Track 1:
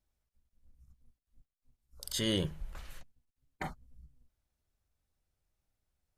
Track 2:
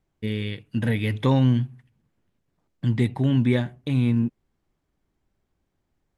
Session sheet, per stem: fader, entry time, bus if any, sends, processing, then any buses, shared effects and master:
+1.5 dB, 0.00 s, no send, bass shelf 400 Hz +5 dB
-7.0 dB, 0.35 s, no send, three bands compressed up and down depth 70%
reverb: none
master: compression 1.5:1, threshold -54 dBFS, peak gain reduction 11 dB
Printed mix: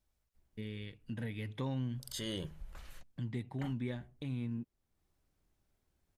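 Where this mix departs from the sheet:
stem 1: missing bass shelf 400 Hz +5 dB; stem 2: missing three bands compressed up and down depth 70%

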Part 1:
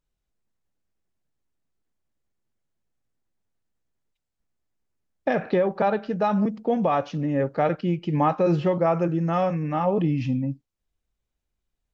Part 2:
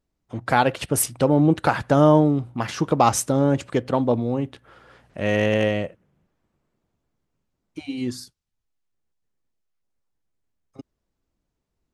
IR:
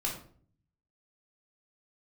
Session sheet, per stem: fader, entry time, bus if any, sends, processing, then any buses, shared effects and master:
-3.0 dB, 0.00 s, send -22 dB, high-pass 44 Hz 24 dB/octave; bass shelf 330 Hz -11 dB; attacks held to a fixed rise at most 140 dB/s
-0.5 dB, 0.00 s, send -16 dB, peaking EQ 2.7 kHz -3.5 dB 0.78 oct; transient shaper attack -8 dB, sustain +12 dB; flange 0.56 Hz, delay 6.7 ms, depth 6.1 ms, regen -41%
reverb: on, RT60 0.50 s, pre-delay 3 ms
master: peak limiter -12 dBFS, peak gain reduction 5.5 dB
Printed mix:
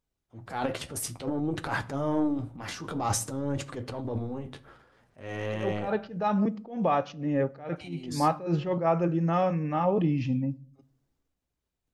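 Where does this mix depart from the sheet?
stem 1: missing bass shelf 330 Hz -11 dB; stem 2 -0.5 dB -> -9.5 dB

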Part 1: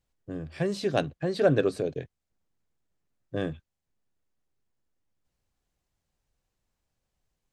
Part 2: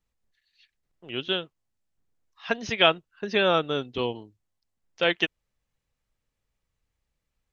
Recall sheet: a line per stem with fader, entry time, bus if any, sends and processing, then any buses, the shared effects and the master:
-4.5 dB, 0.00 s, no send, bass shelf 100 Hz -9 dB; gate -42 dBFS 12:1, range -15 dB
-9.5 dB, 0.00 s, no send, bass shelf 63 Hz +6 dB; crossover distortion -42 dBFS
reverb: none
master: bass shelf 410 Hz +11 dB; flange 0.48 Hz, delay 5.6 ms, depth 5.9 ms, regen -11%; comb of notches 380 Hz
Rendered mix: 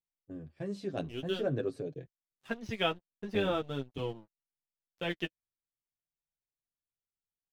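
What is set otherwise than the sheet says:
stem 1 -4.5 dB -> -11.5 dB; master: missing comb of notches 380 Hz

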